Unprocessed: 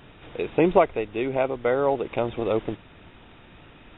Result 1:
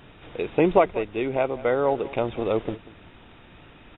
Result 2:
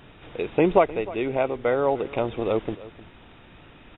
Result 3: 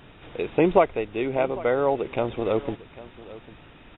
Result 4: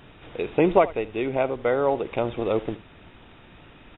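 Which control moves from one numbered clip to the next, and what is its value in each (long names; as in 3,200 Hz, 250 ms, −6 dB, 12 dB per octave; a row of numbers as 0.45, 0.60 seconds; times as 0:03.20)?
single-tap delay, delay time: 188, 307, 799, 76 milliseconds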